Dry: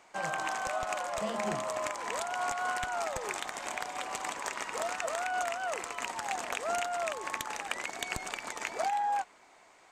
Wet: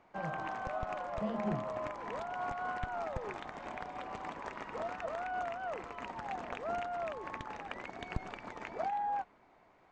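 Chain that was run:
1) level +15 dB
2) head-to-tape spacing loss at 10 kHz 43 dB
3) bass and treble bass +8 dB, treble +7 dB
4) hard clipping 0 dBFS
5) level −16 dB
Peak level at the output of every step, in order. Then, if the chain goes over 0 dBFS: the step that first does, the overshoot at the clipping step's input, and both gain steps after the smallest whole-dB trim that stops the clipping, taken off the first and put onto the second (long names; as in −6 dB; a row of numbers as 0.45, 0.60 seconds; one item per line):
−3.5, −9.0, −4.5, −4.5, −20.5 dBFS
no step passes full scale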